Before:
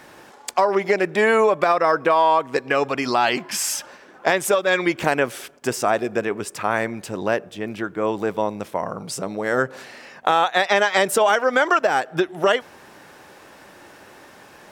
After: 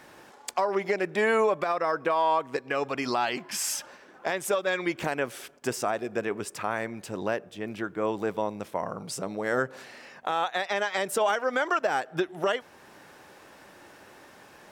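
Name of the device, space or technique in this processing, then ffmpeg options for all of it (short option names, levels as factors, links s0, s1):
clipper into limiter: -af "asoftclip=type=hard:threshold=0.668,alimiter=limit=0.335:level=0:latency=1:release=427,volume=0.531"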